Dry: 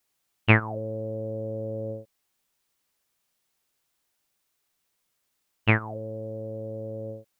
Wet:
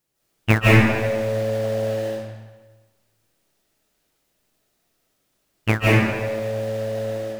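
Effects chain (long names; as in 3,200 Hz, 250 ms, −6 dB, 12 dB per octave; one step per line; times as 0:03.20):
in parallel at −6 dB: sample-rate reduction 1,200 Hz, jitter 20%
on the sum: comb and all-pass reverb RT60 1.3 s, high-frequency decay 0.85×, pre-delay 120 ms, DRR −7.5 dB
level −2 dB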